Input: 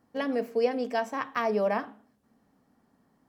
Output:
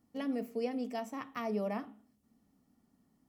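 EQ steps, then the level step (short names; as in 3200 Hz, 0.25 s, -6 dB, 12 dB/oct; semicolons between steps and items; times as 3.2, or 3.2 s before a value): notch 1600 Hz, Q 6; dynamic EQ 4800 Hz, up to -5 dB, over -52 dBFS, Q 0.77; graphic EQ 125/500/1000/2000/4000 Hz -4/-9/-9/-5/-4 dB; 0.0 dB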